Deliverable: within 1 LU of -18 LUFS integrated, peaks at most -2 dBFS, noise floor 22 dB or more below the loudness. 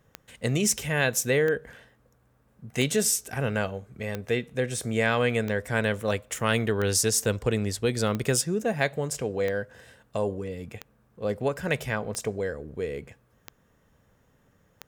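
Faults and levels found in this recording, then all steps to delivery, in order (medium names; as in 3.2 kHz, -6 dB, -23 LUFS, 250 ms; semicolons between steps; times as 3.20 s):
clicks found 12; loudness -27.0 LUFS; peak level -9.0 dBFS; loudness target -18.0 LUFS
-> de-click; trim +9 dB; peak limiter -2 dBFS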